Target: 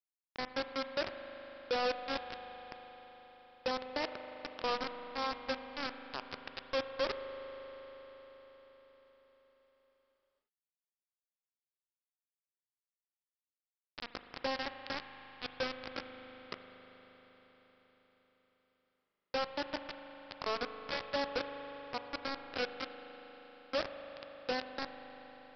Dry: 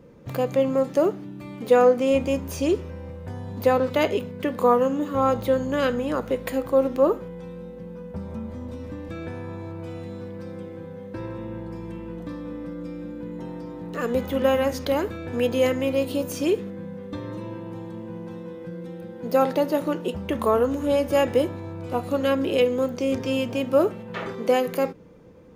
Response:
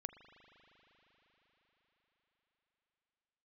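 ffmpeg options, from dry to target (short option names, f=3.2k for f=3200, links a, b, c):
-filter_complex "[0:a]lowpass=1.1k,aderivative,asplit=2[a][b];[b]acompressor=threshold=-52dB:ratio=6,volume=1.5dB[c];[a][c]amix=inputs=2:normalize=0,acrusher=bits=5:mix=0:aa=0.000001,aresample=11025,asoftclip=type=hard:threshold=-40dB,aresample=44100[d];[1:a]atrim=start_sample=2205[e];[d][e]afir=irnorm=-1:irlink=0,volume=16.5dB"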